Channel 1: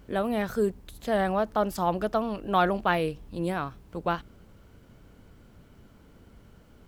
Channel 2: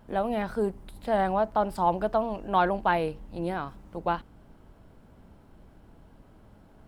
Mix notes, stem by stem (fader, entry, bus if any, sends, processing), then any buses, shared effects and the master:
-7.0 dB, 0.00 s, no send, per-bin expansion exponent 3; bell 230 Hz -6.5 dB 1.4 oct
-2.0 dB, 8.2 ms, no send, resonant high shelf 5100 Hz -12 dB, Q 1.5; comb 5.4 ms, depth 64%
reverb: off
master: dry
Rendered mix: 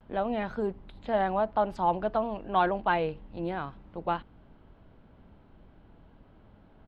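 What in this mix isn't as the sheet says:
stem 2: missing comb 5.4 ms, depth 64%; master: extra air absorption 90 m

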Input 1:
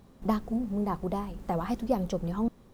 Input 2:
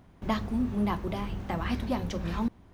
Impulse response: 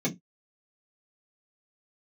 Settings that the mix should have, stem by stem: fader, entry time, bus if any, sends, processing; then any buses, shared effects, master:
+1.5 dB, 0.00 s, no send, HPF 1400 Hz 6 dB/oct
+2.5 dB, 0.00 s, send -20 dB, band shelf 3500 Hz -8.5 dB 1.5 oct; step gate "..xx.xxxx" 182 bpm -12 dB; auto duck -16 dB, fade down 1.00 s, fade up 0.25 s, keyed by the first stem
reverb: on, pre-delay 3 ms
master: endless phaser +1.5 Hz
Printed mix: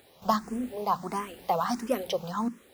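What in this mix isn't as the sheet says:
stem 1 +1.5 dB -> +13.5 dB; stem 2 +2.5 dB -> -8.0 dB

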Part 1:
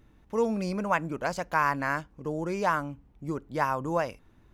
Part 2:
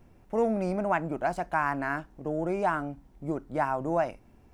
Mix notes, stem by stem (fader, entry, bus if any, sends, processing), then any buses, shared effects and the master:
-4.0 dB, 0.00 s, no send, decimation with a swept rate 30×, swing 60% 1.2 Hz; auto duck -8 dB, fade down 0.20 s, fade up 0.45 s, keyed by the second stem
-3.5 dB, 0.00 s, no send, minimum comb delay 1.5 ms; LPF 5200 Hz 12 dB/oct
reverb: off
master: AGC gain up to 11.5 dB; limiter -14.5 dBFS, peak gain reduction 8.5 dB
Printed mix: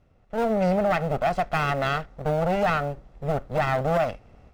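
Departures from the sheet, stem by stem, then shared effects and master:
stem 1 -4.0 dB -> -15.0 dB; stem 2: polarity flipped

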